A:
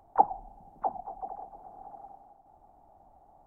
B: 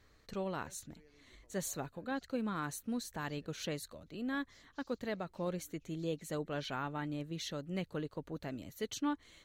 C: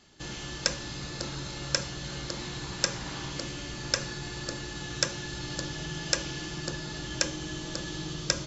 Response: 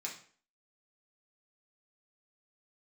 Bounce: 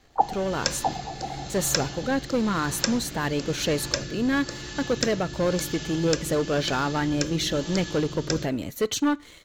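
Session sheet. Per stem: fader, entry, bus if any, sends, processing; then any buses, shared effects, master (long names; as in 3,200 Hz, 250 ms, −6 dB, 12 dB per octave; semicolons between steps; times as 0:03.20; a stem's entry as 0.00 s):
+0.5 dB, 0.00 s, no send, low-pass that shuts in the quiet parts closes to 400 Hz, open at −24.5 dBFS
+2.0 dB, 0.00 s, send −17.5 dB, parametric band 460 Hz +3 dB; leveller curve on the samples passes 2
−2.0 dB, 0.00 s, no send, rotating-speaker cabinet horn 1 Hz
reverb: on, RT60 0.45 s, pre-delay 3 ms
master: automatic gain control gain up to 5 dB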